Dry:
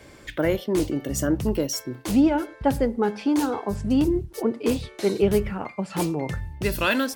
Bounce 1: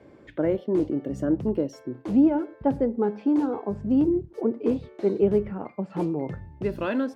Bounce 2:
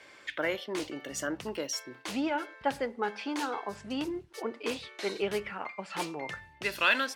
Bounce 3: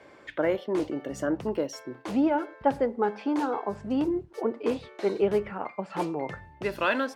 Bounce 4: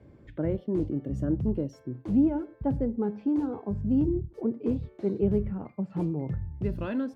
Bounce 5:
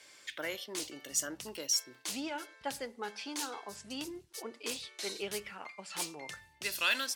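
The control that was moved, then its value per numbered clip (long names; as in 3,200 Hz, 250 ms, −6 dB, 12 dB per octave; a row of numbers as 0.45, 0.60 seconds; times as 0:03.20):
resonant band-pass, frequency: 320, 2,200, 860, 120, 5,800 Hertz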